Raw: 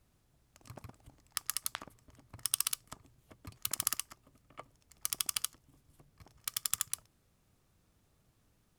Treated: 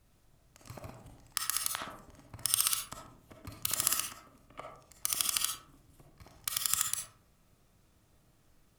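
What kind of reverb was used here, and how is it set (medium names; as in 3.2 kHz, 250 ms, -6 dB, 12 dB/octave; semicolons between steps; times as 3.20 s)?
algorithmic reverb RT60 0.66 s, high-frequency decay 0.4×, pre-delay 10 ms, DRR 1 dB; trim +2.5 dB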